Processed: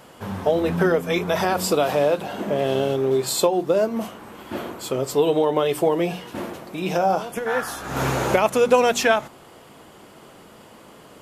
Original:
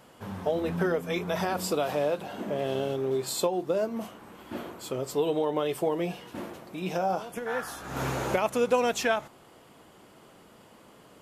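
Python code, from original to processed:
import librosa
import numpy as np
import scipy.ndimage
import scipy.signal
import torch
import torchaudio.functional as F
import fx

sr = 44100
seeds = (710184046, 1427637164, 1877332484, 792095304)

y = fx.hum_notches(x, sr, base_hz=60, count=5)
y = y * 10.0 ** (8.0 / 20.0)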